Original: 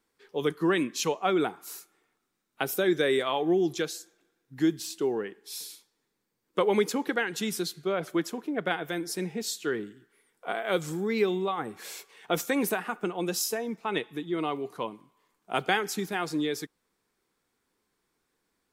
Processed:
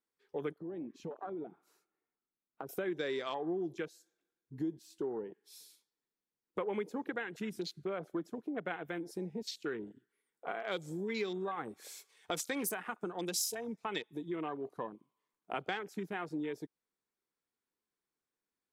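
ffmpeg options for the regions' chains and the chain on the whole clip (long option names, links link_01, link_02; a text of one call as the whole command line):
ffmpeg -i in.wav -filter_complex "[0:a]asettb=1/sr,asplit=3[link_01][link_02][link_03];[link_01]atrim=end=0.584[link_04];[link_02]atrim=start=0.58:end=2.69,asetpts=PTS-STARTPTS,afade=type=in:duration=0.004:curve=qsin,afade=type=out:start_time=2.106:duration=0.004:curve=qsin,lowpass=frequency=1200:poles=1,acompressor=threshold=-37dB:ratio=4:attack=3.2:release=140:knee=1:detection=peak[link_05];[link_03]atrim=start=2.686[link_06];[link_04][link_05]acrossfade=duration=0.004:curve1=hsin:curve2=qsin[link_07];[link_07][link_06]acrossfade=duration=0.004:curve1=qsin:curve2=hsin,asettb=1/sr,asplit=3[link_08][link_09][link_10];[link_08]atrim=end=10.714[link_11];[link_09]atrim=start=10.71:end=14.36,asetpts=PTS-STARTPTS,afade=type=in:duration=0.004:curve=qsin,afade=type=out:start_time=3.646:duration=0.004:curve=qsin,equalizer=frequency=8000:width_type=o:width=2.6:gain=10,bandreject=frequency=2800:width=16[link_12];[link_10]atrim=start=14.356[link_13];[link_11][link_12]acrossfade=duration=0.004:curve1=hsin:curve2=qsin[link_14];[link_14][link_13]acrossfade=duration=0.004:curve1=qsin:curve2=hsin,afwtdn=0.0141,lowshelf=frequency=69:gain=-6.5,acompressor=threshold=-39dB:ratio=2.5" out.wav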